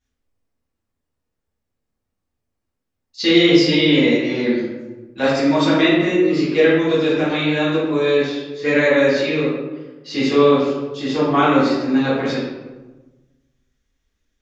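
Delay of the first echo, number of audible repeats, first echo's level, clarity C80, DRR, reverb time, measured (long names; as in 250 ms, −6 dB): no echo audible, no echo audible, no echo audible, 3.0 dB, −12.0 dB, 1.2 s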